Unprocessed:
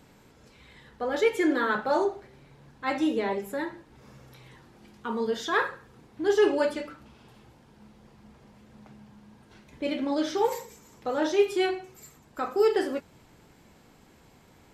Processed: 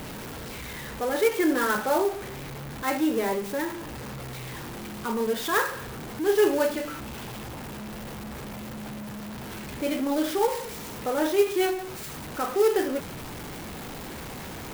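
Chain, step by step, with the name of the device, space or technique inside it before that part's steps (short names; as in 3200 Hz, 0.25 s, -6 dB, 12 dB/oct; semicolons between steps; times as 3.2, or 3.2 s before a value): early CD player with a faulty converter (zero-crossing step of -32.5 dBFS; clock jitter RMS 0.036 ms)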